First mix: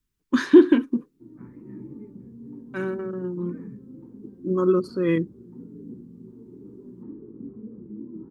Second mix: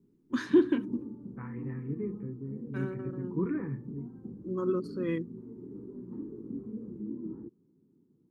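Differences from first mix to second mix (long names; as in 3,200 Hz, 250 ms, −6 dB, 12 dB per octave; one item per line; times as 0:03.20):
first voice −10.0 dB
second voice +12.0 dB
background: entry −0.90 s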